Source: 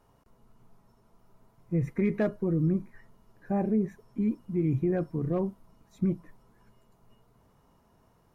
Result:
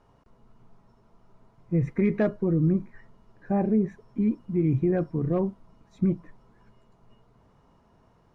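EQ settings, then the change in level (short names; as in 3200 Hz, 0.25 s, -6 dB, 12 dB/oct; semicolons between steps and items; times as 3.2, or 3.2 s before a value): air absorption 85 m; +3.5 dB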